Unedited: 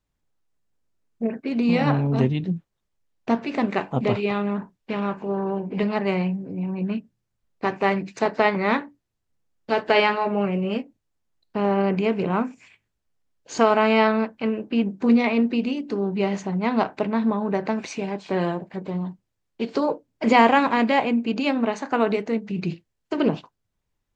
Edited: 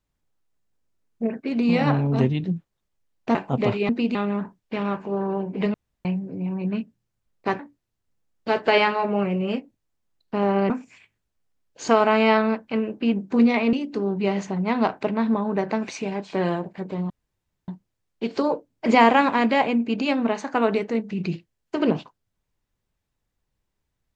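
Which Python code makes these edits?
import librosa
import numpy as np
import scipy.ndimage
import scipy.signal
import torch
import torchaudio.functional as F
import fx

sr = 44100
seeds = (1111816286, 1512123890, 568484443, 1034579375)

y = fx.edit(x, sr, fx.cut(start_s=3.35, length_s=0.43),
    fx.room_tone_fill(start_s=5.91, length_s=0.31),
    fx.cut(start_s=7.76, length_s=1.05),
    fx.cut(start_s=11.92, length_s=0.48),
    fx.move(start_s=15.43, length_s=0.26, to_s=4.32),
    fx.insert_room_tone(at_s=19.06, length_s=0.58), tone=tone)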